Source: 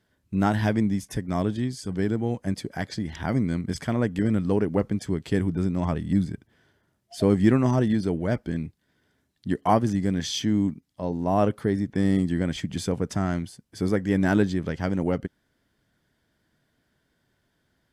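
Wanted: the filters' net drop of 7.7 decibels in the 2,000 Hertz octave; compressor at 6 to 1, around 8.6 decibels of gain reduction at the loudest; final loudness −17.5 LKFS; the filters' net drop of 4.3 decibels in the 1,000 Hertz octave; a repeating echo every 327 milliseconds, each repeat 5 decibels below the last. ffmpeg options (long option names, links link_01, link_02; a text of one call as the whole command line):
ffmpeg -i in.wav -af "equalizer=frequency=1000:width_type=o:gain=-4.5,equalizer=frequency=2000:width_type=o:gain=-8.5,acompressor=threshold=-24dB:ratio=6,aecho=1:1:327|654|981|1308|1635|1962|2289:0.562|0.315|0.176|0.0988|0.0553|0.031|0.0173,volume=12dB" out.wav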